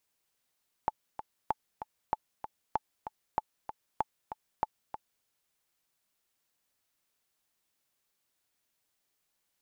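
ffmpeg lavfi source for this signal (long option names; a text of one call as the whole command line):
ffmpeg -f lavfi -i "aevalsrc='pow(10,(-14.5-10.5*gte(mod(t,2*60/192),60/192))/20)*sin(2*PI*867*mod(t,60/192))*exp(-6.91*mod(t,60/192)/0.03)':duration=4.37:sample_rate=44100" out.wav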